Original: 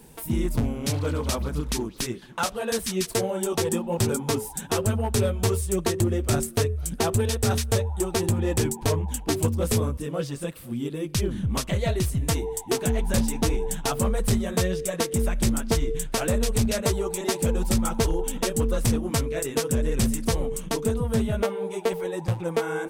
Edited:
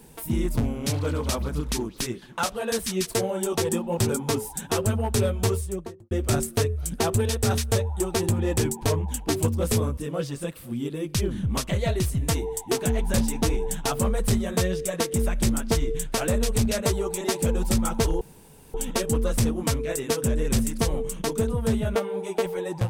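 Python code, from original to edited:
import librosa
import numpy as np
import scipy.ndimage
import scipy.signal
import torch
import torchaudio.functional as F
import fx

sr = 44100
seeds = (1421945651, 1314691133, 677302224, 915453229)

y = fx.studio_fade_out(x, sr, start_s=5.42, length_s=0.69)
y = fx.edit(y, sr, fx.insert_room_tone(at_s=18.21, length_s=0.53), tone=tone)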